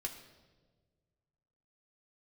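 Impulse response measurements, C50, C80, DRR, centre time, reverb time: 9.0 dB, 10.5 dB, 0.5 dB, 20 ms, 1.5 s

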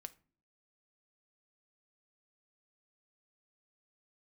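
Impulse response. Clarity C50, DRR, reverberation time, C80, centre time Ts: 19.5 dB, 11.0 dB, not exponential, 25.5 dB, 3 ms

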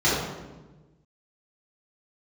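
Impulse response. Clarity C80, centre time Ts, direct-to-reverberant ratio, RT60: 2.5 dB, 82 ms, -11.0 dB, 1.2 s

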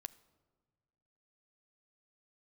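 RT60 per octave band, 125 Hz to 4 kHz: 2.0, 1.8, 1.7, 1.5, 1.1, 0.80 s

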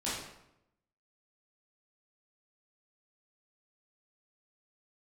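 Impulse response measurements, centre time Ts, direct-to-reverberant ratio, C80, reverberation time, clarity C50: 63 ms, -10.0 dB, 4.5 dB, 0.85 s, 1.0 dB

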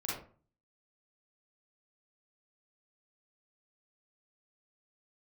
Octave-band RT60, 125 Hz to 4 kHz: 0.65, 0.50, 0.45, 0.40, 0.35, 0.25 s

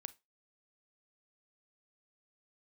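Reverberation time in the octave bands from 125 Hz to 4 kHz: 0.20, 0.20, 0.20, 0.25, 0.20, 0.20 s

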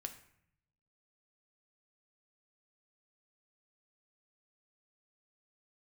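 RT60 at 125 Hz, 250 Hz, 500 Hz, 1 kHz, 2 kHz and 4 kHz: 1.3, 0.95, 0.65, 0.65, 0.70, 0.50 s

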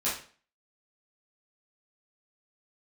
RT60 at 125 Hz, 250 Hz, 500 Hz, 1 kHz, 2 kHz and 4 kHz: 0.40, 0.45, 0.45, 0.40, 0.40, 0.40 s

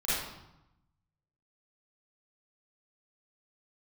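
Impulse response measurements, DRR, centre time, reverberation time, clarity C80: -12.5 dB, 85 ms, 0.90 s, 1.5 dB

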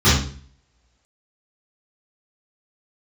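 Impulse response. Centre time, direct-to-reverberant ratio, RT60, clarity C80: 48 ms, -15.0 dB, 0.45 s, 7.5 dB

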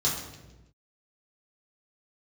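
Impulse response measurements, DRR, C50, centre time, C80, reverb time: -6.5 dB, 4.0 dB, 46 ms, 6.5 dB, 1.1 s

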